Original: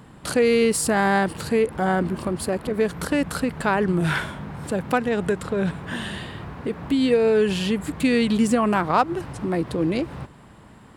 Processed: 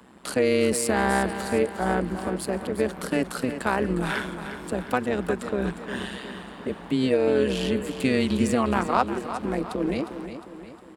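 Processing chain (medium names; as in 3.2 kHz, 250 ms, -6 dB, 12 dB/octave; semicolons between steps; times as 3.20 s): steep high-pass 170 Hz 96 dB/octave; AM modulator 130 Hz, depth 60%; feedback delay 357 ms, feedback 50%, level -10.5 dB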